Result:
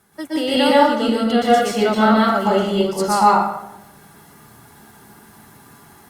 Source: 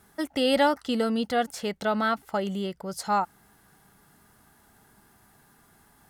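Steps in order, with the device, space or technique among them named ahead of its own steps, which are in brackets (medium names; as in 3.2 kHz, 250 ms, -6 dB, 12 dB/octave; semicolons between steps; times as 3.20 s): far-field microphone of a smart speaker (reverberation RT60 0.90 s, pre-delay 115 ms, DRR -6.5 dB; high-pass 93 Hz; level rider gain up to 6 dB; Opus 48 kbps 48 kHz)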